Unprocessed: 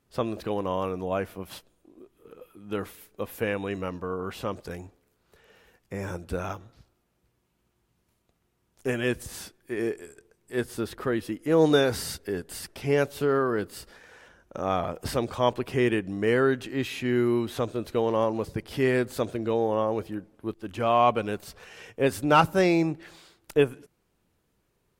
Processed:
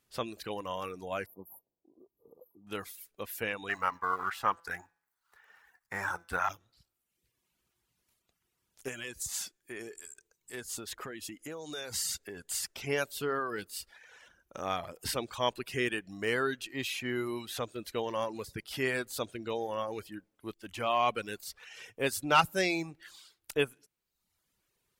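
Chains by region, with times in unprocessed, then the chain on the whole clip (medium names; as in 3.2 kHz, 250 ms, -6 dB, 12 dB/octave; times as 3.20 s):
1.26–2.67 s: brick-wall FIR band-stop 1.2–11 kHz + comb of notches 1.1 kHz + tape noise reduction on one side only decoder only
3.69–6.49 s: companding laws mixed up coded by A + high-order bell 1.2 kHz +14 dB + de-hum 168 Hz, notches 38
8.88–12.87 s: peaking EQ 7 kHz +9 dB 0.36 oct + compression, threshold -30 dBFS
whole clip: tilt shelf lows -6.5 dB, about 1.3 kHz; reverb removal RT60 0.83 s; trim -3.5 dB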